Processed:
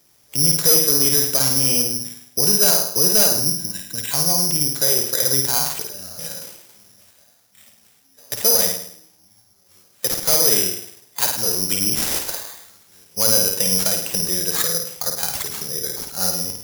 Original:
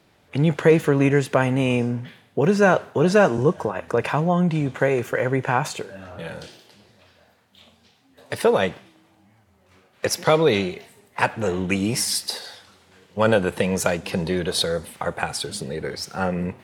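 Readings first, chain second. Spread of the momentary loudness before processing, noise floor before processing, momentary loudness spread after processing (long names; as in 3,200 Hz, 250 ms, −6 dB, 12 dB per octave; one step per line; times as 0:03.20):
14 LU, −59 dBFS, 14 LU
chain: gain on a spectral selection 0:03.40–0:04.11, 340–1,500 Hz −18 dB
high-shelf EQ 11,000 Hz −6 dB
flutter between parallel walls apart 9.1 metres, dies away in 0.61 s
hard clipping −12 dBFS, distortion −14 dB
bad sample-rate conversion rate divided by 8×, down none, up zero stuff
level −7.5 dB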